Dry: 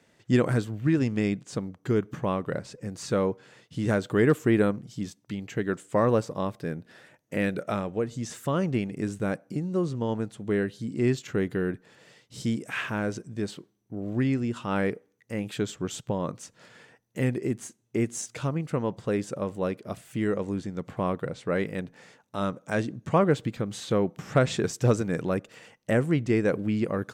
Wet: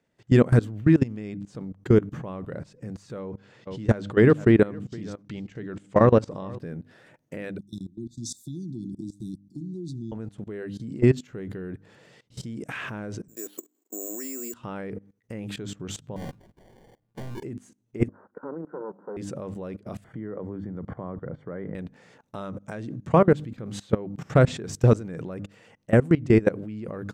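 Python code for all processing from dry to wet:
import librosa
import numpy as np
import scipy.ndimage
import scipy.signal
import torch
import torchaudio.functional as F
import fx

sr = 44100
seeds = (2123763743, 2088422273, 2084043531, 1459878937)

y = fx.chain(x, sr, fx.lowpass(hz=6000.0, slope=12),
    fx.high_shelf(hz=2900.0, db=3.5),
    fx.echo_single(ms=466, db=-17.0), at=(3.19, 6.59))
y = fx.chain(y, sr, fx.brickwall_bandstop(low_hz=370.0, high_hz=3400.0),
    fx.low_shelf(hz=260.0, db=-9.0),
    fx.band_widen(depth_pct=70), at=(7.58, 10.12))
y = fx.chain(y, sr, fx.steep_highpass(hz=290.0, slope=36),
    fx.resample_bad(factor=6, down='filtered', up='zero_stuff'), at=(13.28, 14.54))
y = fx.chain(y, sr, fx.clip_hard(threshold_db=-32.5),
    fx.comb_fb(f0_hz=110.0, decay_s=0.15, harmonics='all', damping=0.0, mix_pct=60),
    fx.sample_hold(seeds[0], rate_hz=1300.0, jitter_pct=0), at=(16.16, 17.43))
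y = fx.chain(y, sr, fx.lower_of_two(delay_ms=2.1),
    fx.cheby1_bandpass(low_hz=180.0, high_hz=1600.0, order=5), at=(18.08, 19.17))
y = fx.chain(y, sr, fx.savgol(points=41),
    fx.band_squash(depth_pct=40), at=(20.04, 21.75))
y = fx.tilt_eq(y, sr, slope=-1.5)
y = fx.hum_notches(y, sr, base_hz=50, count=6)
y = fx.level_steps(y, sr, step_db=20)
y = F.gain(torch.from_numpy(y), 5.5).numpy()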